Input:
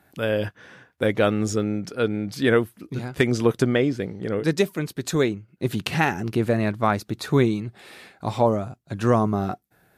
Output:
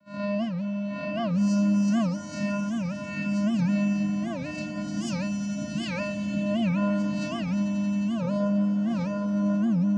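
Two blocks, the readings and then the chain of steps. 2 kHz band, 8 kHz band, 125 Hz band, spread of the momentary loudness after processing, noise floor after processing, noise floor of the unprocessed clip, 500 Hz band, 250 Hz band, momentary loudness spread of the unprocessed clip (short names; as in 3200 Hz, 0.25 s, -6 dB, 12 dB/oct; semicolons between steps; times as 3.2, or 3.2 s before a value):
-8.5 dB, -5.5 dB, -3.5 dB, 7 LU, -34 dBFS, -63 dBFS, -11.0 dB, +1.5 dB, 10 LU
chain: spectral swells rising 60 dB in 0.53 s; gate -41 dBFS, range -13 dB; high shelf 5100 Hz +8.5 dB; compressor, threshold -22 dBFS, peak gain reduction 10 dB; vocoder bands 8, square 203 Hz; on a send: swelling echo 89 ms, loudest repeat 5, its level -10 dB; on the sum: FDN reverb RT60 1.4 s, low-frequency decay 0.9×, high-frequency decay 0.65×, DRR -2 dB; record warp 78 rpm, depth 250 cents; gain -2 dB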